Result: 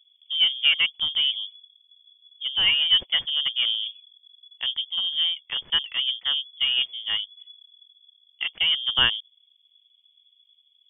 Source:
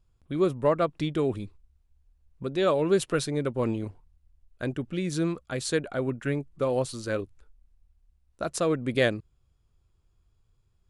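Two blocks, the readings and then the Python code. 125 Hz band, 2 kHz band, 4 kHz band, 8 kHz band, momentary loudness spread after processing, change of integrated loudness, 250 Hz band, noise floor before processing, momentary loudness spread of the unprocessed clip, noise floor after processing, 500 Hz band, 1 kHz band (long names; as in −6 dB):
below −15 dB, +8.0 dB, +22.5 dB, below −40 dB, 12 LU, +6.0 dB, below −20 dB, −69 dBFS, 11 LU, −65 dBFS, below −20 dB, −6.5 dB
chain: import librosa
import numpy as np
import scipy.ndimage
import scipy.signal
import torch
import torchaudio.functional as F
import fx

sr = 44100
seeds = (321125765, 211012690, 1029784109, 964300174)

y = fx.wiener(x, sr, points=25)
y = fx.freq_invert(y, sr, carrier_hz=3400)
y = F.gain(torch.from_numpy(y), 3.0).numpy()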